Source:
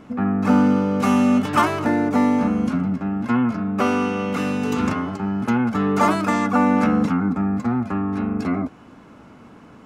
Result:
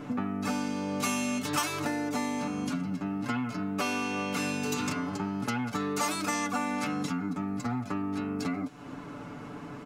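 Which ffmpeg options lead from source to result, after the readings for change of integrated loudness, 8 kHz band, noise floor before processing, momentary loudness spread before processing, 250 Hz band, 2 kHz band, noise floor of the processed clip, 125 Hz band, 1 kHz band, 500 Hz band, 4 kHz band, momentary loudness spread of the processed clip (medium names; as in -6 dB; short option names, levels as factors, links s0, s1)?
-11.0 dB, +3.5 dB, -46 dBFS, 7 LU, -12.5 dB, -6.5 dB, -43 dBFS, -11.5 dB, -11.0 dB, -11.5 dB, -1.0 dB, 6 LU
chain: -filter_complex "[0:a]aecho=1:1:6.9:0.68,acrossover=split=3000[s0][s1];[s0]acompressor=threshold=0.0282:ratio=12[s2];[s2][s1]amix=inputs=2:normalize=0,volume=1.26"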